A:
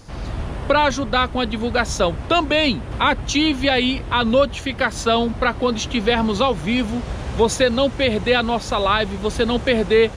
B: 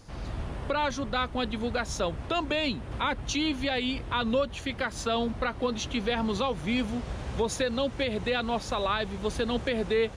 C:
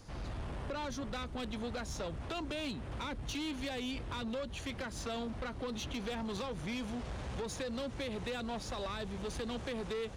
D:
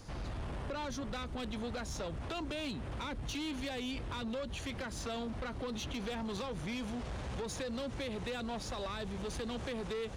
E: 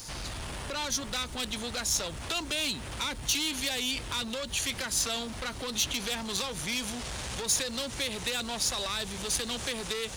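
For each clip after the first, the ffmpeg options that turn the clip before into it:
ffmpeg -i in.wav -af "alimiter=limit=-9.5dB:level=0:latency=1:release=190,volume=-8dB" out.wav
ffmpeg -i in.wav -filter_complex "[0:a]acrossover=split=460|4000[link_01][link_02][link_03];[link_01]acompressor=threshold=-32dB:ratio=4[link_04];[link_02]acompressor=threshold=-35dB:ratio=4[link_05];[link_03]acompressor=threshold=-42dB:ratio=4[link_06];[link_04][link_05][link_06]amix=inputs=3:normalize=0,asoftclip=type=tanh:threshold=-31.5dB,volume=-2.5dB" out.wav
ffmpeg -i in.wav -af "alimiter=level_in=13.5dB:limit=-24dB:level=0:latency=1:release=69,volume=-13.5dB,volume=3dB" out.wav
ffmpeg -i in.wav -af "crystalizer=i=9:c=0,aeval=exprs='val(0)+0.001*sin(2*PI*910*n/s)':channel_layout=same" out.wav

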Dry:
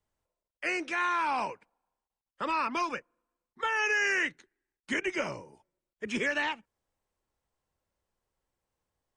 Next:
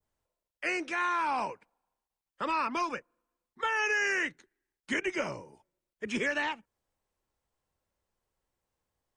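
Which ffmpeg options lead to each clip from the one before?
ffmpeg -i in.wav -af "adynamicequalizer=threshold=0.00631:dfrequency=2900:dqfactor=0.8:tfrequency=2900:tqfactor=0.8:attack=5:release=100:ratio=0.375:range=2:mode=cutabove:tftype=bell" out.wav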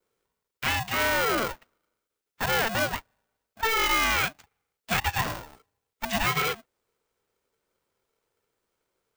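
ffmpeg -i in.wav -af "aeval=exprs='val(0)*sgn(sin(2*PI*450*n/s))':channel_layout=same,volume=5dB" out.wav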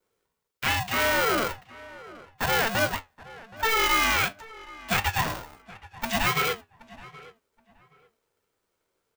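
ffmpeg -i in.wav -filter_complex "[0:a]flanger=delay=9.9:depth=3.1:regen=69:speed=1.4:shape=sinusoidal,asplit=2[link_01][link_02];[link_02]adelay=774,lowpass=frequency=2200:poles=1,volume=-19dB,asplit=2[link_03][link_04];[link_04]adelay=774,lowpass=frequency=2200:poles=1,volume=0.24[link_05];[link_01][link_03][link_05]amix=inputs=3:normalize=0,volume=5.5dB" out.wav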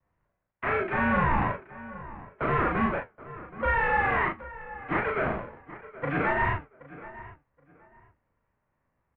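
ffmpeg -i in.wav -filter_complex "[0:a]volume=24.5dB,asoftclip=hard,volume=-24.5dB,asplit=2[link_01][link_02];[link_02]adelay=38,volume=-2.5dB[link_03];[link_01][link_03]amix=inputs=2:normalize=0,highpass=frequency=200:width_type=q:width=0.5412,highpass=frequency=200:width_type=q:width=1.307,lowpass=frequency=2500:width_type=q:width=0.5176,lowpass=frequency=2500:width_type=q:width=0.7071,lowpass=frequency=2500:width_type=q:width=1.932,afreqshift=-380,volume=1.5dB" out.wav

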